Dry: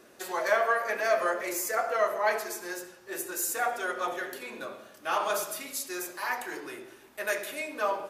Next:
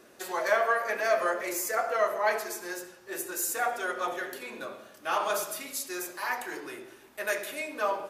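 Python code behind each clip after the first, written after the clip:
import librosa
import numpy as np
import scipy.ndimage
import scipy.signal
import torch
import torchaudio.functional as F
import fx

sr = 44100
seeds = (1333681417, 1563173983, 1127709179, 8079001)

y = x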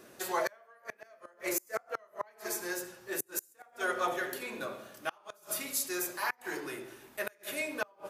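y = fx.high_shelf(x, sr, hz=11000.0, db=5.5)
y = fx.gate_flip(y, sr, shuts_db=-19.0, range_db=-33)
y = fx.peak_eq(y, sr, hz=130.0, db=6.0, octaves=1.0)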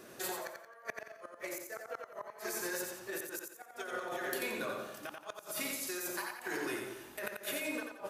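y = fx.over_compress(x, sr, threshold_db=-38.0, ratio=-1.0)
y = fx.echo_feedback(y, sr, ms=88, feedback_pct=36, wet_db=-5)
y = y * librosa.db_to_amplitude(-1.5)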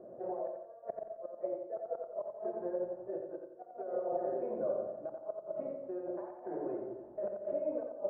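y = fx.ladder_lowpass(x, sr, hz=670.0, resonance_pct=70)
y = fx.room_shoebox(y, sr, seeds[0], volume_m3=2300.0, walls='furnished', distance_m=0.88)
y = y * librosa.db_to_amplitude(8.5)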